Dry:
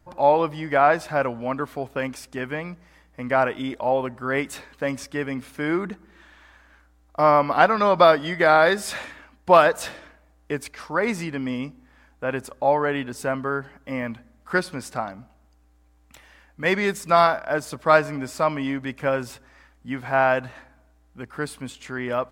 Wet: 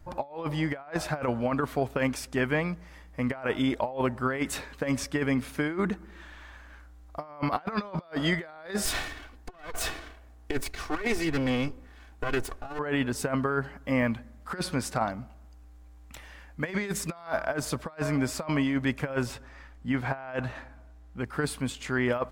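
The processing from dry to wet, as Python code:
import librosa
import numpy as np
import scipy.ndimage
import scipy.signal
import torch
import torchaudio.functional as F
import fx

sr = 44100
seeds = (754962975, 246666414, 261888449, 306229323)

y = fx.lower_of_two(x, sr, delay_ms=2.7, at=(8.85, 12.79))
y = fx.high_shelf(y, sr, hz=7500.0, db=-7.5, at=(19.26, 21.24))
y = fx.low_shelf(y, sr, hz=70.0, db=10.5)
y = fx.over_compress(y, sr, threshold_db=-26.0, ratio=-0.5)
y = y * 10.0 ** (-2.5 / 20.0)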